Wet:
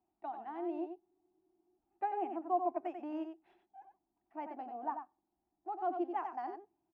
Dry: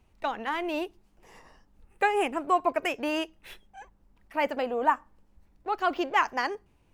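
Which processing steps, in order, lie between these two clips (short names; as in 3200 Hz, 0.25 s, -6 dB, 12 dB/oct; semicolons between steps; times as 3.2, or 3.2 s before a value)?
double band-pass 500 Hz, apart 1.1 oct; echo 92 ms -7 dB; spectral freeze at 1.02, 0.76 s; gain -4.5 dB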